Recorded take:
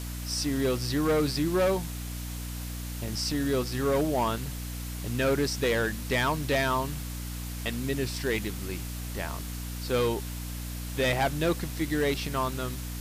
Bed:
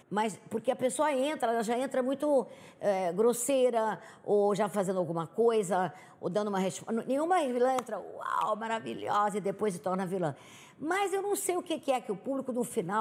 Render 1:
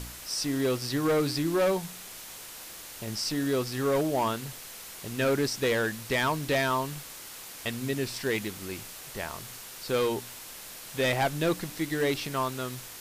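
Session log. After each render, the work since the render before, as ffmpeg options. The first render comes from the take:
-af "bandreject=f=60:t=h:w=4,bandreject=f=120:t=h:w=4,bandreject=f=180:t=h:w=4,bandreject=f=240:t=h:w=4,bandreject=f=300:t=h:w=4"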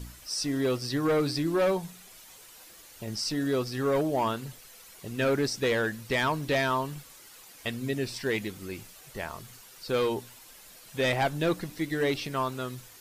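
-af "afftdn=nr=10:nf=-44"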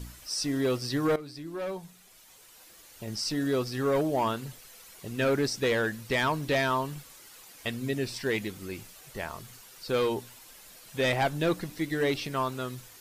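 -filter_complex "[0:a]asplit=2[a][b];[a]atrim=end=1.16,asetpts=PTS-STARTPTS,afade=t=out:st=1.156:d=0.004:c=hsin:silence=0.149624[c];[b]atrim=start=1.16,asetpts=PTS-STARTPTS,afade=t=in:d=2.19:silence=0.149624[d];[c][d]concat=n=2:v=0:a=1"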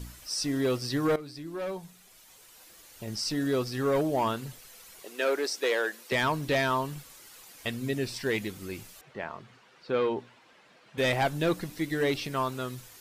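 -filter_complex "[0:a]asettb=1/sr,asplit=3[a][b][c];[a]atrim=end=5.024[d];[b]atrim=start=5.02:end=6.12,asetpts=PTS-STARTPTS,afade=t=in:d=0.004:c=qsin,afade=t=out:st=1.096:d=0.004:c=qsin,highpass=f=360:w=0.5412,highpass=f=360:w=1.3066[e];[c]atrim=start=6.116[f];[d][e]acrossfade=d=0.004:c1=hsin:c2=qsin[g];[g][f]acrossfade=d=0.004:c1=qsin:c2=hsin,asettb=1/sr,asplit=3[h][i][j];[h]atrim=end=9.014[k];[i]atrim=start=9.01:end=10.98,asetpts=PTS-STARTPTS,afade=t=in:d=0.004:c=qsin,afade=t=out:st=1.966:d=0.004:c=qsin,highpass=150,lowpass=2.5k[l];[j]atrim=start=10.976[m];[k][l]acrossfade=d=0.004:c1=hsin:c2=qsin[n];[n][m]acrossfade=d=0.004:c1=qsin:c2=hsin"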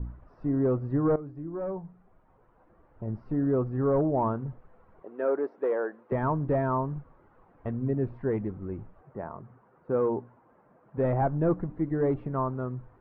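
-af "lowpass=f=1.2k:w=0.5412,lowpass=f=1.2k:w=1.3066,lowshelf=f=180:g=8.5"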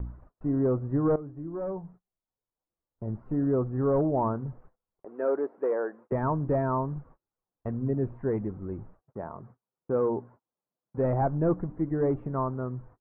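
-af "lowpass=1.7k,agate=range=-34dB:threshold=-50dB:ratio=16:detection=peak"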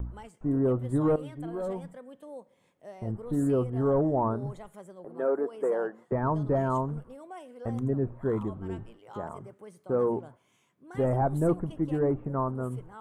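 -filter_complex "[1:a]volume=-17dB[a];[0:a][a]amix=inputs=2:normalize=0"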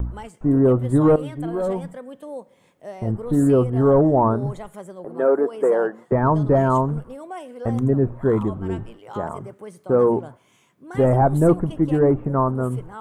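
-af "volume=9.5dB"

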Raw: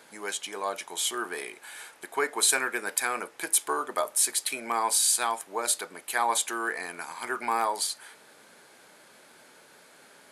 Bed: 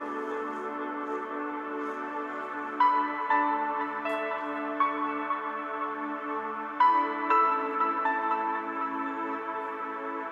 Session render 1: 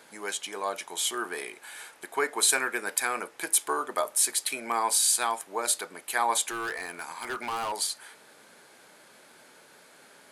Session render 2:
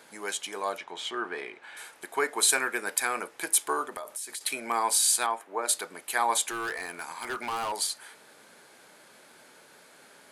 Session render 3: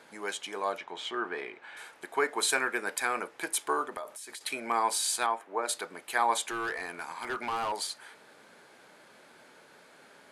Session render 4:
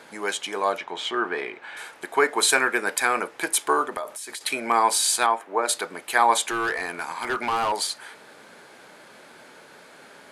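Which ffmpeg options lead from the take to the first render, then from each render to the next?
-filter_complex "[0:a]asettb=1/sr,asplit=3[a][b][c];[a]atrim=end=6.504[d];[b]atrim=start=6.5:end=7.72,asetpts=PTS-STARTPTS,afade=t=in:d=0.004:c=qsin,afade=t=out:st=1.216:d=0.004:c=qsin,volume=28.5dB,asoftclip=hard,volume=-28.5dB[e];[c]atrim=start=7.716[f];[d][e]acrossfade=d=0.004:c1=hsin:c2=qsin[g];[g][f]acrossfade=d=0.004:c1=qsin:c2=hsin"
-filter_complex "[0:a]asettb=1/sr,asplit=3[a][b][c];[a]atrim=end=0.784[d];[b]atrim=start=0.78:end=1.77,asetpts=PTS-STARTPTS,afade=t=in:d=0.004:c=qsin,afade=t=out:st=0.986:d=0.004:c=qsin,lowpass=3.2k[e];[c]atrim=start=1.766[f];[d][e]acrossfade=d=0.004:c1=hsin:c2=qsin[g];[g][f]acrossfade=d=0.004:c1=qsin:c2=hsin,asettb=1/sr,asplit=3[h][i][j];[h]atrim=end=3.844[k];[i]atrim=start=3.84:end=4.41,asetpts=PTS-STARTPTS,afade=t=in:d=0.004:c=qsin,afade=t=out:st=0.566:d=0.004:c=qsin,acompressor=threshold=-33dB:ratio=10:attack=3.2:release=140:knee=1:detection=peak[l];[j]atrim=start=4.406[m];[k][l]acrossfade=d=0.004:c1=hsin:c2=qsin[n];[n][m]acrossfade=d=0.004:c1=qsin:c2=hsin,asettb=1/sr,asplit=3[o][p][q];[o]atrim=end=5.264[r];[p]atrim=start=5.26:end=5.69,asetpts=PTS-STARTPTS,afade=t=in:d=0.004:c=qsin,afade=t=out:st=0.426:d=0.004:c=qsin,acrossover=split=190 2600:gain=0.0708 1 0.224[s][t][u];[s][t][u]amix=inputs=3:normalize=0[v];[q]atrim=start=5.686[w];[r][v]acrossfade=d=0.004:c1=hsin:c2=qsin[x];[x][w]acrossfade=d=0.004:c1=qsin:c2=hsin"
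-af "lowpass=f=3.6k:p=1"
-af "volume=8dB"

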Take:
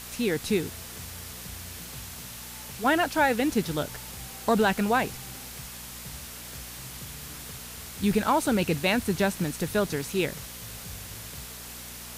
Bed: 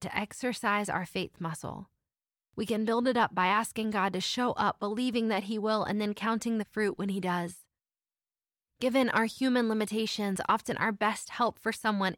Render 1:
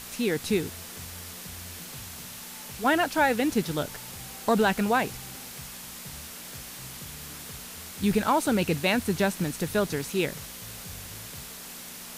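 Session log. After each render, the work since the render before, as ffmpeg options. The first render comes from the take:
-af "bandreject=f=60:t=h:w=4,bandreject=f=120:t=h:w=4"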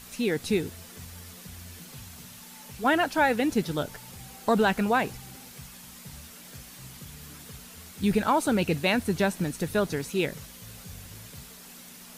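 -af "afftdn=nr=7:nf=-42"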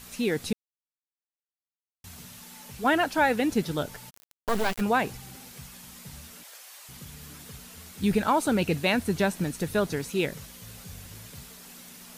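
-filter_complex "[0:a]asplit=3[a][b][c];[a]afade=t=out:st=4.09:d=0.02[d];[b]acrusher=bits=3:dc=4:mix=0:aa=0.000001,afade=t=in:st=4.09:d=0.02,afade=t=out:st=4.8:d=0.02[e];[c]afade=t=in:st=4.8:d=0.02[f];[d][e][f]amix=inputs=3:normalize=0,asettb=1/sr,asplit=3[g][h][i];[g]atrim=end=6.434[j];[h]atrim=start=6.43:end=6.89,asetpts=PTS-STARTPTS,afade=t=in:d=0.004:c=qsin,afade=t=out:st=0.456:d=0.004:c=qsin,highpass=f=560:w=0.5412,highpass=f=560:w=1.3066[k];[i]atrim=start=6.886[l];[j][k]acrossfade=d=0.004:c1=hsin:c2=qsin[m];[m][l]acrossfade=d=0.004:c1=qsin:c2=hsin,asplit=3[n][o][p];[n]atrim=end=0.53,asetpts=PTS-STARTPTS,afade=t=out:st=0.526:d=0.004:c=hsin[q];[o]atrim=start=0.53:end=2.04,asetpts=PTS-STARTPTS,volume=0[r];[p]atrim=start=2.04,asetpts=PTS-STARTPTS,afade=t=in:d=0.004:c=hsin[s];[q][r][s]concat=n=3:v=0:a=1"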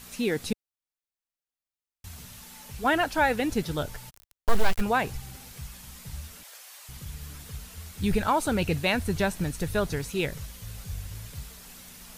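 -af "asubboost=boost=5.5:cutoff=91"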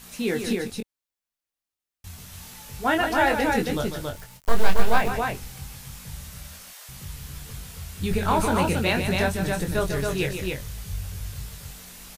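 -filter_complex "[0:a]asplit=2[a][b];[b]adelay=22,volume=-5dB[c];[a][c]amix=inputs=2:normalize=0,asplit=2[d][e];[e]aecho=0:1:148|276:0.398|0.668[f];[d][f]amix=inputs=2:normalize=0"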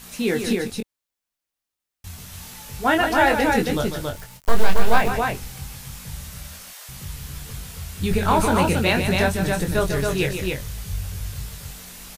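-af "volume=3.5dB,alimiter=limit=-3dB:level=0:latency=1"

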